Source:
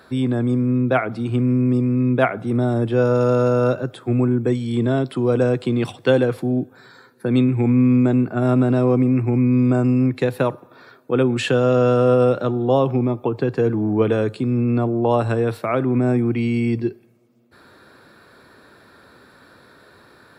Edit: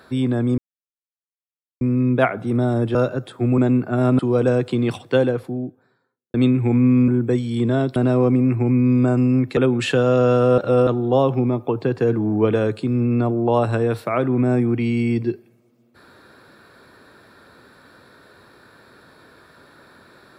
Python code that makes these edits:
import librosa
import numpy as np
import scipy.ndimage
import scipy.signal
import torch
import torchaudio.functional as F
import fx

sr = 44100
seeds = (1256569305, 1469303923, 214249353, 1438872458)

y = fx.studio_fade_out(x, sr, start_s=5.78, length_s=1.5)
y = fx.edit(y, sr, fx.silence(start_s=0.58, length_s=1.23),
    fx.cut(start_s=2.95, length_s=0.67),
    fx.swap(start_s=4.25, length_s=0.88, other_s=8.02, other_length_s=0.61),
    fx.cut(start_s=10.24, length_s=0.9),
    fx.reverse_span(start_s=12.15, length_s=0.29), tone=tone)